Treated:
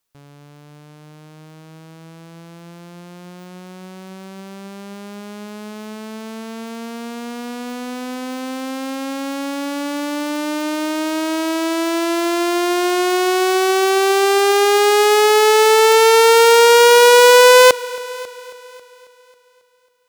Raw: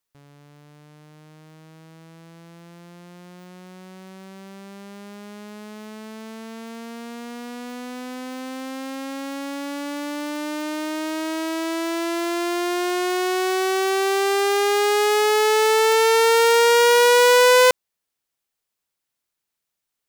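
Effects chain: bell 1900 Hz -3.5 dB 0.24 oct; on a send: multi-head echo 0.272 s, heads first and second, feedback 41%, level -23 dB; on the sum: gain +6 dB

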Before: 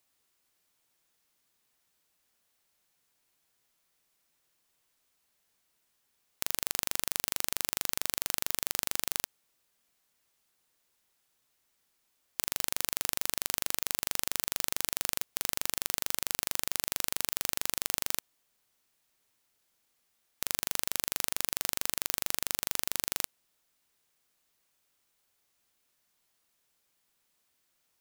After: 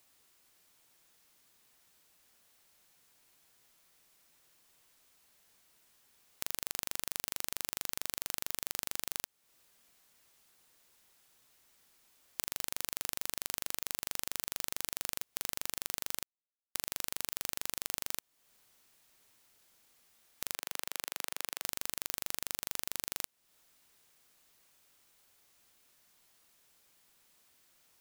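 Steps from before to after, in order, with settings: 16.23–16.75 mute; 20.54–21.64 tone controls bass -15 dB, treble -5 dB; compressor 2.5:1, threshold -44 dBFS, peak gain reduction 13.5 dB; gain +7.5 dB

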